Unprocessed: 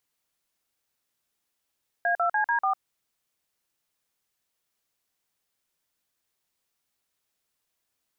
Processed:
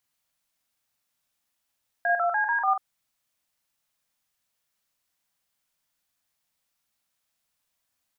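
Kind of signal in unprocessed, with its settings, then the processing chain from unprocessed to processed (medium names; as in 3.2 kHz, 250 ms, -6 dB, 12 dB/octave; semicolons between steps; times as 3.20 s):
DTMF "A2CD4", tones 101 ms, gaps 45 ms, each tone -24 dBFS
peaking EQ 390 Hz -15 dB 0.31 oct; doubling 43 ms -5 dB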